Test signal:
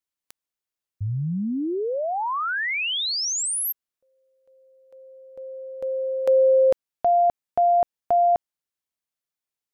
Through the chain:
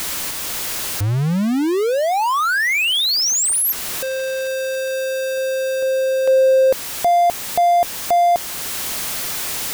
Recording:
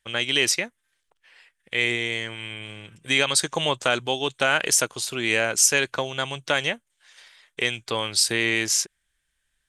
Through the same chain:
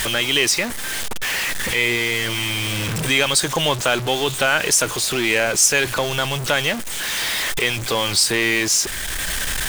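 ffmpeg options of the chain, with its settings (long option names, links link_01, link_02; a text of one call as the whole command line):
ffmpeg -i in.wav -filter_complex "[0:a]aeval=exprs='val(0)+0.5*0.0668*sgn(val(0))':channel_layout=same,asplit=2[link_01][link_02];[link_02]acompressor=threshold=-28dB:ratio=6:attack=0.43:release=447:detection=rms,volume=2dB[link_03];[link_01][link_03]amix=inputs=2:normalize=0" out.wav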